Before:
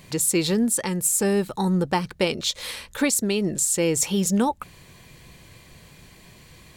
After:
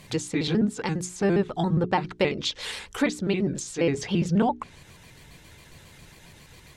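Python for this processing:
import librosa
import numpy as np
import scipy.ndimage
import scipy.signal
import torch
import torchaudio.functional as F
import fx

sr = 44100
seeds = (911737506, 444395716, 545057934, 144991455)

y = fx.pitch_trill(x, sr, semitones=-2.5, every_ms=68)
y = fx.hum_notches(y, sr, base_hz=60, count=7)
y = fx.env_lowpass_down(y, sr, base_hz=2900.0, full_db=-20.0)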